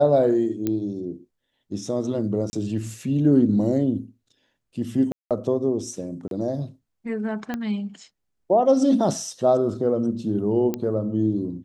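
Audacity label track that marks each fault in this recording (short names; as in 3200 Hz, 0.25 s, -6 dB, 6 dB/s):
0.670000	0.670000	pop -12 dBFS
2.500000	2.530000	gap 30 ms
5.120000	5.310000	gap 0.187 s
6.280000	6.310000	gap 32 ms
7.540000	7.540000	pop -15 dBFS
10.740000	10.740000	pop -13 dBFS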